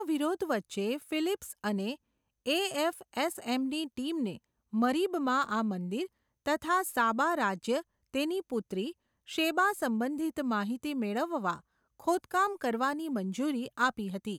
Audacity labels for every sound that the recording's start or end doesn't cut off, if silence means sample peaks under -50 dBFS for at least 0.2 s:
2.460000	4.370000	sound
4.730000	6.070000	sound
6.460000	7.820000	sound
8.140000	8.920000	sound
9.280000	11.600000	sound